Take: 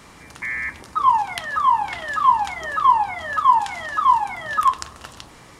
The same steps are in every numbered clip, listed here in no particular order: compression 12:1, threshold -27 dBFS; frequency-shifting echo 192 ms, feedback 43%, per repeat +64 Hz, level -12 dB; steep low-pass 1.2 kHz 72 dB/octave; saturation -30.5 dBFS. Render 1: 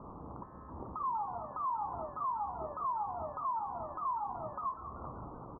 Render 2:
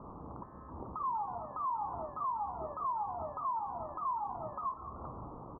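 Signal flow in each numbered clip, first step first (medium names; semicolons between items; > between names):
compression > saturation > steep low-pass > frequency-shifting echo; compression > saturation > frequency-shifting echo > steep low-pass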